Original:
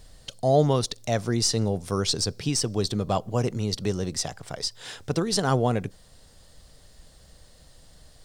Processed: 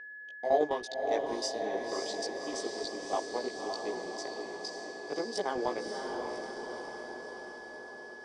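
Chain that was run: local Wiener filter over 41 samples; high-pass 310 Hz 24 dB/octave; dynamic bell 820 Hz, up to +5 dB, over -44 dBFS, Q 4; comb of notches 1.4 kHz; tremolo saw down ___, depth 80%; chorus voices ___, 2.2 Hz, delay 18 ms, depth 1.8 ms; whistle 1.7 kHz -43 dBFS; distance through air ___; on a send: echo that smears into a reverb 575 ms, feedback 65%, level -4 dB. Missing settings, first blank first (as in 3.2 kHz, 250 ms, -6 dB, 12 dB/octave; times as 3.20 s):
9.9 Hz, 4, 73 m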